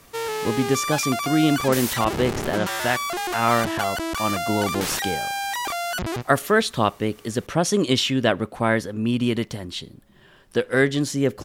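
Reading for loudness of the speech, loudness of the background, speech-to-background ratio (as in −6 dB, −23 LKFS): −23.5 LKFS, −26.5 LKFS, 3.0 dB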